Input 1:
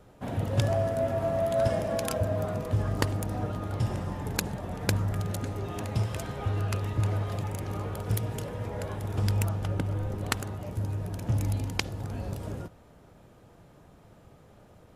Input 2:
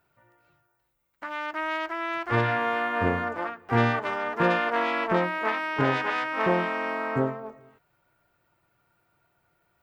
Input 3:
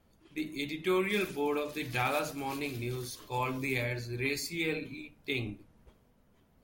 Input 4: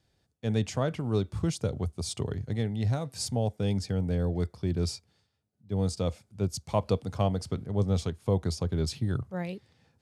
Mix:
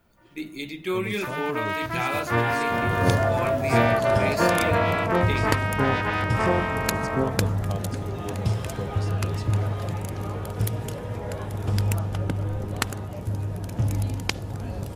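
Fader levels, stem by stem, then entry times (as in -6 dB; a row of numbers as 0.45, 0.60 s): +3.0, +1.0, +2.0, -7.5 dB; 2.50, 0.00, 0.00, 0.50 s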